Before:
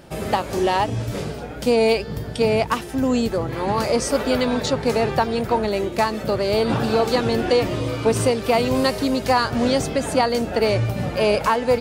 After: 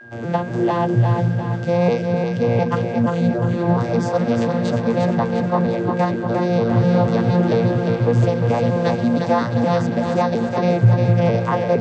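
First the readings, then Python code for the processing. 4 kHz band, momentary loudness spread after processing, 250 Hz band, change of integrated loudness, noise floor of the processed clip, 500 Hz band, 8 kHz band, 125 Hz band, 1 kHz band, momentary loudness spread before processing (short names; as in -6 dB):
-9.0 dB, 4 LU, +4.0 dB, +2.0 dB, -25 dBFS, 0.0 dB, under -10 dB, +9.5 dB, -0.5 dB, 5 LU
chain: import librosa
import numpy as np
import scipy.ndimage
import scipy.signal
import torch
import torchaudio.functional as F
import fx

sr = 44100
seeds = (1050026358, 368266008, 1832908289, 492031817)

y = fx.vocoder_arp(x, sr, chord='bare fifth', root=46, every_ms=235)
y = y + 10.0 ** (-42.0 / 20.0) * np.sin(2.0 * np.pi * 1600.0 * np.arange(len(y)) / sr)
y = fx.wow_flutter(y, sr, seeds[0], rate_hz=2.1, depth_cents=28.0)
y = fx.echo_split(y, sr, split_hz=410.0, low_ms=253, high_ms=352, feedback_pct=52, wet_db=-4.5)
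y = y * 10.0 ** (2.0 / 20.0)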